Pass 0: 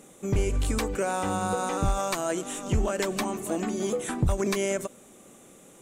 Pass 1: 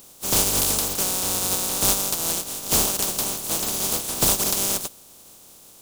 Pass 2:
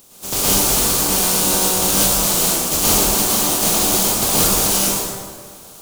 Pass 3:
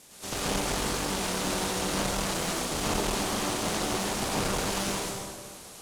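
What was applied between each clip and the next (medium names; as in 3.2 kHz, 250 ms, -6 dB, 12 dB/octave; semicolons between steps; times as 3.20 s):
spectral contrast reduction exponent 0.15; peaking EQ 1.9 kHz -12.5 dB 1.2 oct; trim +5.5 dB
gain riding 0.5 s; plate-style reverb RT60 1.8 s, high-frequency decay 0.6×, pre-delay 95 ms, DRR -9 dB; trim -1 dB
CVSD coder 64 kbps; one-sided clip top -27 dBFS; trim -5 dB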